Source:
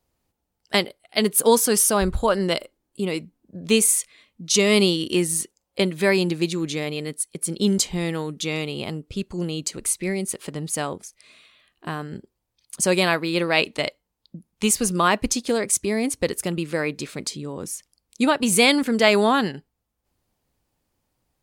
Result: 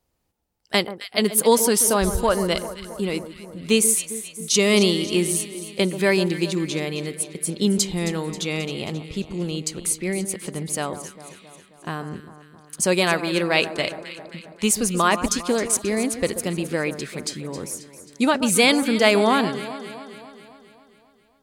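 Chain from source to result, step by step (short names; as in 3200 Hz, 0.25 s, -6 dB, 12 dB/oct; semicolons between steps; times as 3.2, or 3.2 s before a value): echo with dull and thin repeats by turns 0.134 s, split 1400 Hz, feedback 75%, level -11 dB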